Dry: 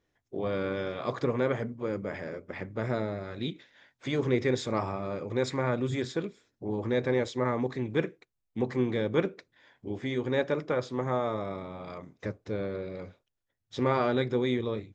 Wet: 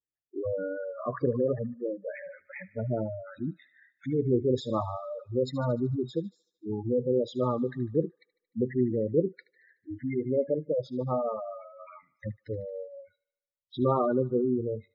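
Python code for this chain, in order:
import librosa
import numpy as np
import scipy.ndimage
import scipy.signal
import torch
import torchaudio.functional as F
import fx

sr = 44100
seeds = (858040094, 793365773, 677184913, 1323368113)

p1 = fx.noise_reduce_blind(x, sr, reduce_db=28)
p2 = fx.spec_gate(p1, sr, threshold_db=-10, keep='strong')
p3 = fx.high_shelf(p2, sr, hz=6800.0, db=-12.0)
p4 = p3 + fx.echo_wet_highpass(p3, sr, ms=75, feedback_pct=59, hz=1700.0, wet_db=-16.5, dry=0)
y = F.gain(torch.from_numpy(p4), 2.5).numpy()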